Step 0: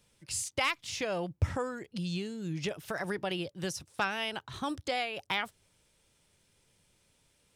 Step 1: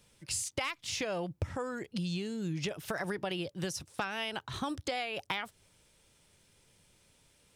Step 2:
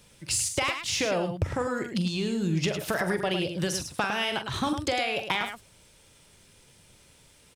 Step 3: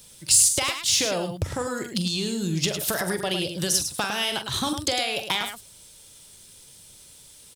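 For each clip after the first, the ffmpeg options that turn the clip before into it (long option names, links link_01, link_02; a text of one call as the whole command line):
ffmpeg -i in.wav -af "acompressor=threshold=-35dB:ratio=6,volume=3.5dB" out.wav
ffmpeg -i in.wav -filter_complex "[0:a]asplit=2[link_01][link_02];[link_02]asoftclip=type=tanh:threshold=-29dB,volume=-5dB[link_03];[link_01][link_03]amix=inputs=2:normalize=0,aecho=1:1:43.73|105:0.282|0.398,volume=4dB" out.wav
ffmpeg -i in.wav -af "aexciter=amount=3.4:drive=3.6:freq=3300" out.wav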